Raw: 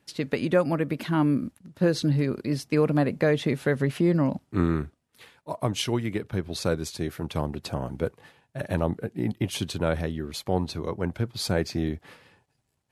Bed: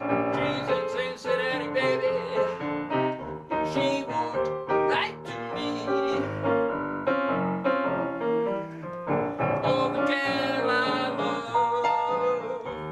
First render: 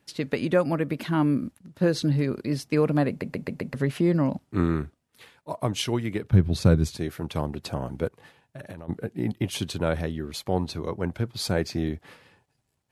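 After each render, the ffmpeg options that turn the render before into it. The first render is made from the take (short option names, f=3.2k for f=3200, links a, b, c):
-filter_complex "[0:a]asettb=1/sr,asplit=3[a][b][c];[a]atrim=end=6.304[d];[b]atrim=start=6.3:end=6.97,asetpts=PTS-STARTPTS,afade=t=in:d=0.004:c=qsin,afade=t=out:st=0.666:d=0.004:c=qsin,bass=f=250:g=14,treble=f=4k:g=-2[e];[c]atrim=start=6.966[f];[d][e]acrossfade=d=0.004:c1=hsin:c2=qsin[g];[g][f]acrossfade=d=0.004:c1=qsin:c2=hsin,asplit=3[h][i][j];[h]afade=t=out:st=8.07:d=0.02[k];[i]acompressor=threshold=-35dB:ratio=16:attack=3.2:release=140:knee=1:detection=peak,afade=t=in:st=8.07:d=0.02,afade=t=out:st=8.88:d=0.02[l];[j]afade=t=in:st=8.88:d=0.02[m];[k][l][m]amix=inputs=3:normalize=0,asplit=6[n][o][p][q][r][s];[n]atrim=end=3.222[t];[o]atrim=start=3.088:end=3.222[u];[p]atrim=start=3.088:end=3.222[v];[q]atrim=start=3.088:end=3.222[w];[r]atrim=start=3.088:end=3.222[x];[s]atrim=start=3.738[y];[t][u]acrossfade=d=0.004:c1=hsin:c2=hsin[z];[z][v]acrossfade=d=0.004:c1=hsin:c2=hsin[aa];[aa][w]acrossfade=d=0.004:c1=hsin:c2=hsin[ab];[ab][x]acrossfade=d=0.004:c1=hsin:c2=hsin[ac];[ac][y]acrossfade=d=0.004:c1=hsin:c2=hsin"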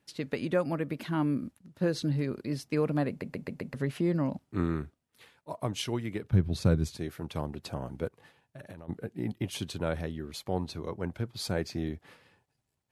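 -af "volume=-6dB"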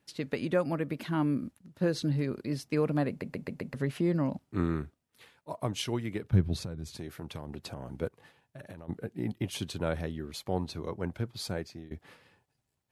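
-filter_complex "[0:a]asettb=1/sr,asplit=3[a][b][c];[a]atrim=end=6.584[d];[b]atrim=start=6.58:end=7.89,asetpts=PTS-STARTPTS,afade=t=in:d=0.004:c=qsin,afade=t=out:st=1.306:d=0.004:c=qsin,acompressor=threshold=-34dB:ratio=8:attack=3.2:release=140:knee=1:detection=peak[e];[c]atrim=start=7.886[f];[d][e]acrossfade=d=0.004:c1=hsin:c2=qsin[g];[g][f]acrossfade=d=0.004:c1=qsin:c2=hsin,asplit=2[h][i];[h]atrim=end=11.91,asetpts=PTS-STARTPTS,afade=t=out:st=11.3:d=0.61:silence=0.1[j];[i]atrim=start=11.91,asetpts=PTS-STARTPTS,afade=t=in:d=0.004:c=hsin:silence=0.1[k];[j][k]concat=n=2:v=0:a=1"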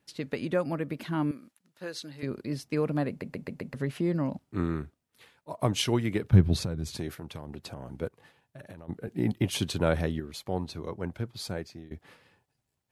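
-filter_complex "[0:a]asettb=1/sr,asplit=3[a][b][c];[a]atrim=end=1.314[d];[b]atrim=start=1.31:end=2.23,asetpts=PTS-STARTPTS,afade=t=in:d=0.004:c=qsin,afade=t=out:st=0.916:d=0.004:c=qsin,highpass=f=1.3k:p=1[e];[c]atrim=start=2.226[f];[d][e]acrossfade=d=0.004:c1=hsin:c2=qsin[g];[g][f]acrossfade=d=0.004:c1=qsin:c2=hsin,asettb=1/sr,asplit=3[h][i][j];[h]atrim=end=5.594[k];[i]atrim=start=5.59:end=7.15,asetpts=PTS-STARTPTS,afade=t=in:d=0.004:c=qsin,afade=t=out:st=1.556:d=0.004:c=qsin,acontrast=55[l];[j]atrim=start=7.146[m];[k][l]acrossfade=d=0.004:c1=hsin:c2=qsin[n];[n][m]acrossfade=d=0.004:c1=qsin:c2=hsin,asettb=1/sr,asplit=3[o][p][q];[o]atrim=end=9.074[r];[p]atrim=start=9.07:end=10.2,asetpts=PTS-STARTPTS,afade=t=in:d=0.004:c=qsin,afade=t=out:st=1.126:d=0.004:c=qsin,acontrast=55[s];[q]atrim=start=10.196[t];[r][s]acrossfade=d=0.004:c1=hsin:c2=qsin[u];[u][t]acrossfade=d=0.004:c1=qsin:c2=hsin"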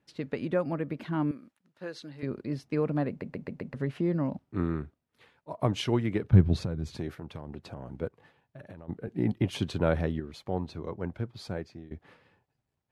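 -af "aemphasis=mode=reproduction:type=75kf"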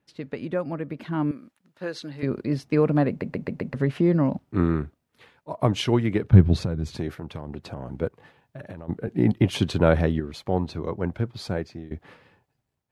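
-af "dynaudnorm=f=940:g=3:m=8dB"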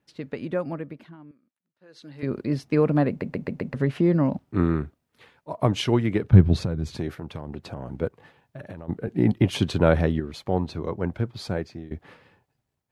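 -filter_complex "[0:a]asplit=3[a][b][c];[a]atrim=end=1.17,asetpts=PTS-STARTPTS,afade=t=out:st=0.68:d=0.49:silence=0.0794328[d];[b]atrim=start=1.17:end=1.88,asetpts=PTS-STARTPTS,volume=-22dB[e];[c]atrim=start=1.88,asetpts=PTS-STARTPTS,afade=t=in:d=0.49:silence=0.0794328[f];[d][e][f]concat=n=3:v=0:a=1"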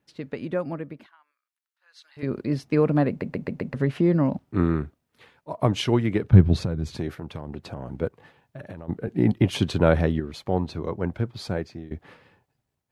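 -filter_complex "[0:a]asettb=1/sr,asplit=3[a][b][c];[a]atrim=end=1.064[d];[b]atrim=start=1.06:end=2.17,asetpts=PTS-STARTPTS,afade=t=in:d=0.004:c=qsin,afade=t=out:st=1.106:d=0.004:c=qsin,highpass=f=1k:w=0.5412,highpass=f=1k:w=1.3066[e];[c]atrim=start=2.166[f];[d][e]acrossfade=d=0.004:c1=hsin:c2=qsin[g];[g][f]acrossfade=d=0.004:c1=qsin:c2=hsin"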